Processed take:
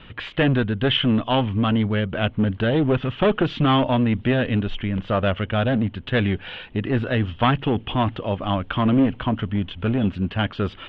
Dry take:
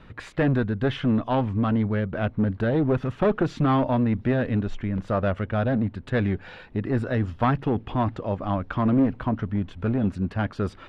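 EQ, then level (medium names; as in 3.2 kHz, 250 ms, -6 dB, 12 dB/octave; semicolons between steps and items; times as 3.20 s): resonant low-pass 3.1 kHz, resonance Q 5.8; +2.5 dB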